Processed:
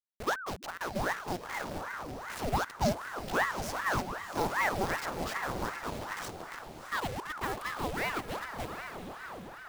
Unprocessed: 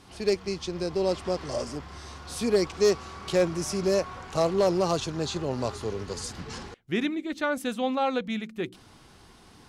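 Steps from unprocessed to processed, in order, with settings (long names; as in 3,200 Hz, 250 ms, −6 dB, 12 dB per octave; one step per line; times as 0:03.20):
hold until the input has moved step −29 dBFS
feedback delay with all-pass diffusion 732 ms, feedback 42%, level −8 dB
ring modulator whose carrier an LFO sweeps 860 Hz, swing 80%, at 2.6 Hz
level −4 dB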